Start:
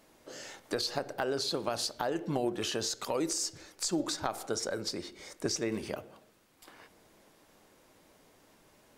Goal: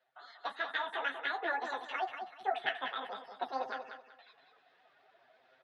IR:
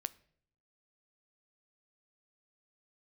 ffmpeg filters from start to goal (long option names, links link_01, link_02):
-filter_complex "[0:a]afftdn=noise_reduction=18:noise_floor=-48,equalizer=frequency=460:width_type=o:width=0.2:gain=-3.5,bandreject=frequency=1000:width=11,areverse,acompressor=mode=upward:threshold=-50dB:ratio=2.5,areverse,flanger=delay=18:depth=7.8:speed=0.34,atempo=0.68,flanger=delay=9:depth=9:regen=39:speed=1.5:shape=sinusoidal,asplit=2[link_01][link_02];[link_02]aecho=0:1:444|888|1332:0.422|0.118|0.0331[link_03];[link_01][link_03]amix=inputs=2:normalize=0,asetrate=103194,aresample=44100,highpass=140,equalizer=frequency=220:width_type=q:width=4:gain=-4,equalizer=frequency=440:width_type=q:width=4:gain=3,equalizer=frequency=690:width_type=q:width=4:gain=7,equalizer=frequency=1700:width_type=q:width=4:gain=9,equalizer=frequency=2400:width_type=q:width=4:gain=6,equalizer=frequency=3500:width_type=q:width=4:gain=6,lowpass=frequency=4300:width=0.5412,lowpass=frequency=4300:width=1.3066"